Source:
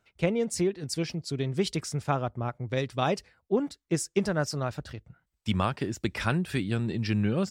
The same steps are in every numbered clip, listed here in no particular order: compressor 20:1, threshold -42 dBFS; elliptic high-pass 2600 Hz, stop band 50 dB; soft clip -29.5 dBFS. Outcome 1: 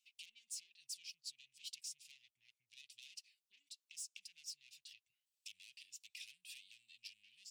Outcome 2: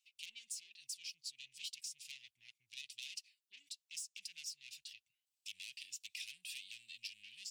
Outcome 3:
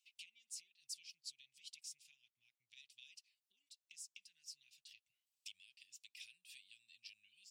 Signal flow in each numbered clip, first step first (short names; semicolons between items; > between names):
soft clip > compressor > elliptic high-pass; soft clip > elliptic high-pass > compressor; compressor > soft clip > elliptic high-pass